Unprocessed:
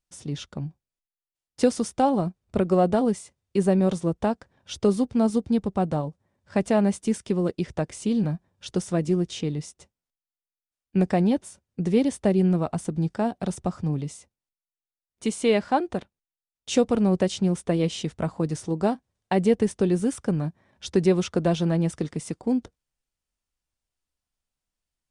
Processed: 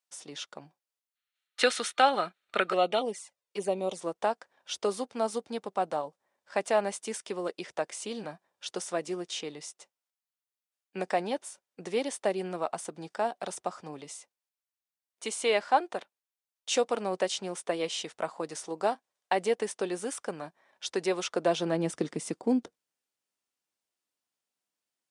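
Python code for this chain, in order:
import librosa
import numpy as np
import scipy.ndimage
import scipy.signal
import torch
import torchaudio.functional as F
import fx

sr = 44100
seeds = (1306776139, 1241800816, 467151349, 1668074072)

y = fx.env_flanger(x, sr, rest_ms=2.5, full_db=-17.0, at=(2.72, 3.99))
y = fx.spec_box(y, sr, start_s=1.15, length_s=1.88, low_hz=1200.0, high_hz=4400.0, gain_db=12)
y = fx.filter_sweep_highpass(y, sr, from_hz=630.0, to_hz=280.0, start_s=21.21, end_s=21.98, q=0.81)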